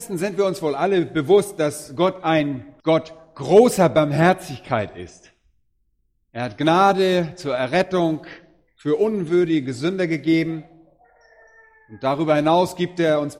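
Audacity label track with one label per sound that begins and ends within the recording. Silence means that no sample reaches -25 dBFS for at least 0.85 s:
6.360000	10.590000	sound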